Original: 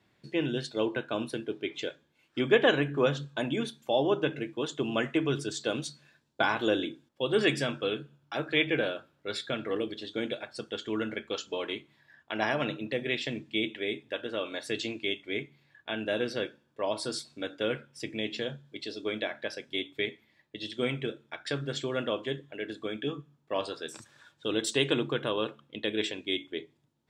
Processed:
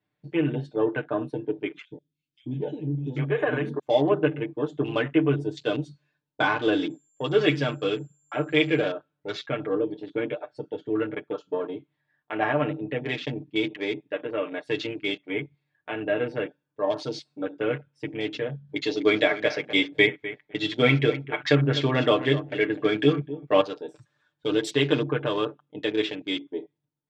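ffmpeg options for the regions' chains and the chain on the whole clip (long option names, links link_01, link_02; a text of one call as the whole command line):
ffmpeg -i in.wav -filter_complex "[0:a]asettb=1/sr,asplit=3[link_01][link_02][link_03];[link_01]atrim=end=1.824[link_04];[link_02]atrim=start=1.82:end=3.79,asetpts=PTS-STARTPTS,afade=type=in:duration=0.004:curve=qsin,afade=type=out:start_time=1.966:duration=0.004:curve=qsin,acompressor=threshold=-23dB:ratio=6:attack=3.2:release=140:knee=1:detection=peak,acrossover=split=300|3100[link_05][link_06][link_07];[link_05]adelay=90[link_08];[link_06]adelay=790[link_09];[link_08][link_09][link_07]amix=inputs=3:normalize=0,atrim=end_sample=86877[link_10];[link_03]atrim=start=3.786[link_11];[link_04][link_10]acrossfade=duration=0.004:curve1=hsin:curve2=qsin[link_12];[link_12][link_11]acrossfade=duration=0.004:curve1=qsin:curve2=hsin,asettb=1/sr,asplit=3[link_13][link_14][link_15];[link_13]atrim=end=6.904[link_16];[link_14]atrim=start=6.9:end=8.84,asetpts=PTS-STARTPTS,afade=type=in:duration=0.004:curve=qsin,afade=type=out:start_time=1.936:duration=0.004:curve=qsin,bandreject=frequency=1800:width=21,aeval=exprs='val(0)+0.00447*sin(2*PI*7300*n/s)':channel_layout=same[link_17];[link_15]atrim=start=8.836[link_18];[link_16][link_17]acrossfade=duration=0.004:curve1=hsin:curve2=qsin[link_19];[link_19][link_18]acrossfade=duration=0.004:curve1=qsin:curve2=hsin,asettb=1/sr,asplit=3[link_20][link_21][link_22];[link_20]atrim=end=10.584[link_23];[link_21]atrim=start=10.58:end=13.7,asetpts=PTS-STARTPTS,afade=type=in:duration=0.004:curve=qsin,afade=type=out:start_time=3.116:duration=0.004:curve=qsin,adynamicequalizer=threshold=0.00398:dfrequency=2300:dqfactor=1.7:tfrequency=2300:tqfactor=1.7:attack=5:release=100:ratio=0.375:range=3:mode=cutabove:tftype=bell,adynamicsmooth=sensitivity=5.5:basefreq=6700[link_24];[link_22]atrim=start=13.696[link_25];[link_23][link_24]acrossfade=duration=0.004:curve1=hsin:curve2=qsin[link_26];[link_26][link_25]acrossfade=duration=0.004:curve1=qsin:curve2=hsin,asettb=1/sr,asplit=3[link_27][link_28][link_29];[link_27]atrim=end=18.694[link_30];[link_28]atrim=start=18.69:end=23.61,asetpts=PTS-STARTPTS,afade=type=in:duration=0.004:curve=qsin,afade=type=out:start_time=4.916:duration=0.004:curve=qsin,acontrast=69,equalizer=frequency=2100:width_type=o:width=0.32:gain=5,aecho=1:1:251|502:0.2|0.0339,atrim=end_sample=216972[link_31];[link_29]atrim=start=23.606[link_32];[link_30][link_31]acrossfade=duration=0.004:curve1=hsin:curve2=qsin[link_33];[link_33][link_32]acrossfade=duration=0.004:curve1=qsin:curve2=hsin,afwtdn=0.01,aemphasis=mode=reproduction:type=50fm,aecho=1:1:6.7:0.8,volume=2.5dB" out.wav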